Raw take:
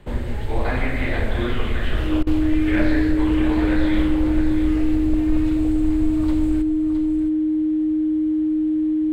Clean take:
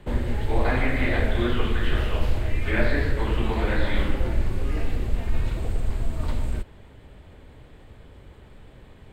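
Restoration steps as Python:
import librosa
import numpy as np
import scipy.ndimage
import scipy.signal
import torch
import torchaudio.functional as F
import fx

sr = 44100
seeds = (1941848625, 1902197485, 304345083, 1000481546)

y = fx.fix_declip(x, sr, threshold_db=-10.0)
y = fx.notch(y, sr, hz=310.0, q=30.0)
y = fx.fix_interpolate(y, sr, at_s=(2.23,), length_ms=37.0)
y = fx.fix_echo_inverse(y, sr, delay_ms=665, level_db=-9.5)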